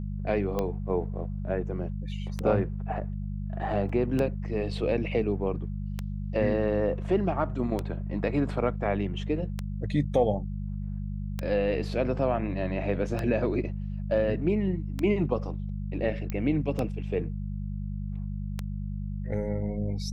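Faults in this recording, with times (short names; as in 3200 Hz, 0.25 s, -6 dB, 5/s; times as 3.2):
hum 50 Hz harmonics 4 -33 dBFS
tick 33 1/3 rpm -16 dBFS
3.89 gap 4.4 ms
16.3 pop -19 dBFS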